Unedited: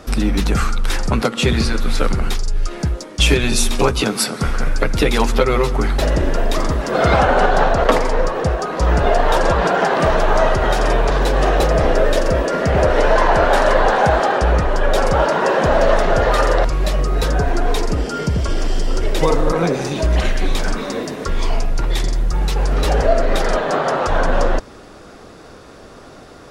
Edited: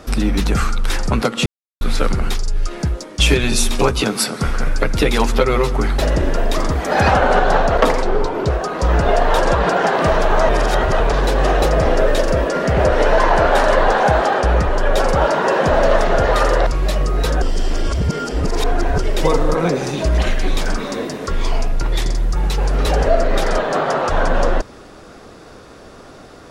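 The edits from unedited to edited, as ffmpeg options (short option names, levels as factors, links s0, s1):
-filter_complex "[0:a]asplit=11[s0][s1][s2][s3][s4][s5][s6][s7][s8][s9][s10];[s0]atrim=end=1.46,asetpts=PTS-STARTPTS,afade=t=out:st=1.456:d=0.004:c=hsin[s11];[s1]atrim=start=1.46:end=1.81,asetpts=PTS-STARTPTS,volume=0[s12];[s2]atrim=start=1.81:end=6.754,asetpts=PTS-STARTPTS,afade=t=in:d=0.004:c=hsin[s13];[s3]atrim=start=6.75:end=7.18,asetpts=PTS-STARTPTS,asetrate=52038,aresample=44100,atrim=end_sample=16070,asetpts=PTS-STARTPTS[s14];[s4]atrim=start=7.176:end=8.094[s15];[s5]atrim=start=8.09:end=8.48,asetpts=PTS-STARTPTS,asetrate=36162,aresample=44100,atrim=end_sample=20974,asetpts=PTS-STARTPTS[s16];[s6]atrim=start=8.476:end=10.472[s17];[s7]atrim=start=10.468:end=10.982,asetpts=PTS-STARTPTS,areverse[s18];[s8]atrim=start=10.978:end=17.402[s19];[s9]atrim=start=17.398:end=18.962,asetpts=PTS-STARTPTS,areverse[s20];[s10]atrim=start=18.958[s21];[s11][s12][s13]concat=n=3:v=0:a=1[s22];[s22][s14]acrossfade=d=0.004:c1=hsin:c2=hsin[s23];[s23][s15]acrossfade=d=0.004:c1=hsin:c2=hsin[s24];[s24][s16]acrossfade=d=0.004:c1=hsin:c2=hsin[s25];[s25][s17]acrossfade=d=0.004:c1=hsin:c2=hsin[s26];[s26][s18]acrossfade=d=0.004:c1=hsin:c2=hsin[s27];[s27][s19]acrossfade=d=0.004:c1=hsin:c2=hsin[s28];[s28][s20]acrossfade=d=0.004:c1=hsin:c2=hsin[s29];[s29][s21]acrossfade=d=0.004:c1=hsin:c2=hsin"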